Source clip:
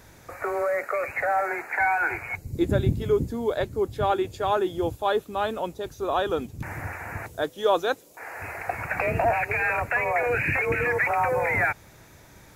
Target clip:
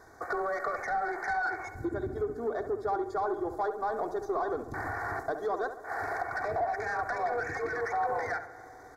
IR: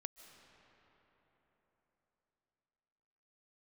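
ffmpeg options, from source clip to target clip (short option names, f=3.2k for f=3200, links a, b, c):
-filter_complex "[0:a]bandreject=f=61.21:t=h:w=4,bandreject=f=122.42:t=h:w=4,bandreject=f=183.63:t=h:w=4,bandreject=f=244.84:t=h:w=4,bandreject=f=306.05:t=h:w=4,agate=range=-6dB:threshold=-39dB:ratio=16:detection=peak,aecho=1:1:2.7:0.6,atempo=1.4,acompressor=threshold=-32dB:ratio=6,highshelf=f=3.8k:g=-8.5,asplit=2[a][b];[b]highpass=f=720:p=1,volume=16dB,asoftclip=type=tanh:threshold=-20dB[c];[a][c]amix=inputs=2:normalize=0,lowpass=f=3.1k:p=1,volume=-6dB,asuperstop=centerf=2800:order=4:qfactor=0.98,asplit=2[d][e];[e]adelay=68,lowpass=f=2k:p=1,volume=-9dB,asplit=2[f][g];[g]adelay=68,lowpass=f=2k:p=1,volume=0.47,asplit=2[h][i];[i]adelay=68,lowpass=f=2k:p=1,volume=0.47,asplit=2[j][k];[k]adelay=68,lowpass=f=2k:p=1,volume=0.47,asplit=2[l][m];[m]adelay=68,lowpass=f=2k:p=1,volume=0.47[n];[d][f][h][j][l][n]amix=inputs=6:normalize=0,asplit=2[o][p];[1:a]atrim=start_sample=2205[q];[p][q]afir=irnorm=-1:irlink=0,volume=-2dB[r];[o][r]amix=inputs=2:normalize=0,volume=-4.5dB"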